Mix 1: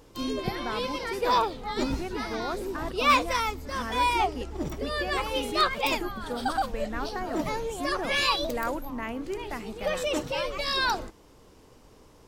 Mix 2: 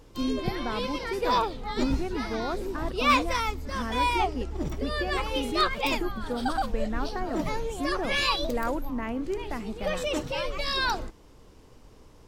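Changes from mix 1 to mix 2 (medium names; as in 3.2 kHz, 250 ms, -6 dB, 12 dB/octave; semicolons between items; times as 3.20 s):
background: add tilt shelf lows -4 dB, about 1.4 kHz; master: add tilt EQ -2 dB/octave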